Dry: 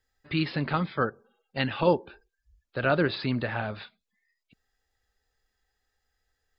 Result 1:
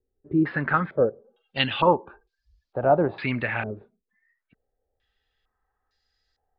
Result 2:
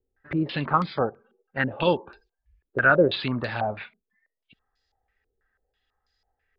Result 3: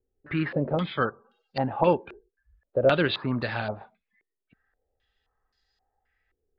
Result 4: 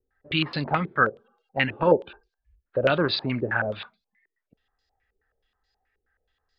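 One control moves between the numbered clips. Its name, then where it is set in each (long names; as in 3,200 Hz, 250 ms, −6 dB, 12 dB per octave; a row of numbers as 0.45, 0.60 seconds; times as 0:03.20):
low-pass on a step sequencer, speed: 2.2, 6.1, 3.8, 9.4 Hertz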